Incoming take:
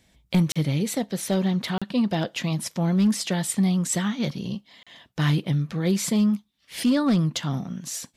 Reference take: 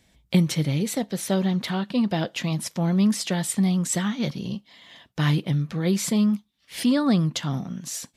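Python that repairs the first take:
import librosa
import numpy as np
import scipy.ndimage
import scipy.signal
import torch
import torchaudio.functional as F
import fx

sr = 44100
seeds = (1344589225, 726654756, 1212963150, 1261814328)

y = fx.fix_declip(x, sr, threshold_db=-14.5)
y = fx.fix_interpolate(y, sr, at_s=(0.52, 1.78, 4.83), length_ms=36.0)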